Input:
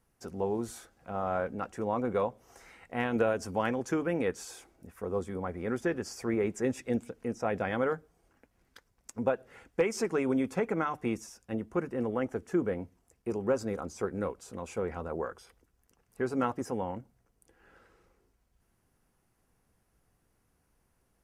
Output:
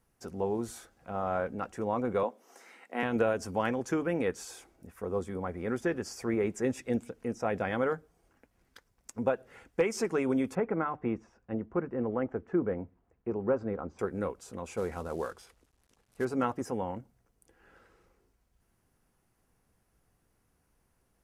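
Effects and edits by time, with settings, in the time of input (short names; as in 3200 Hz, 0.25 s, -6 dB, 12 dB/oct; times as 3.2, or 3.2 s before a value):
2.23–3.03 steep high-pass 210 Hz
10.55–13.99 LPF 1700 Hz
14.77–16.25 CVSD 64 kbps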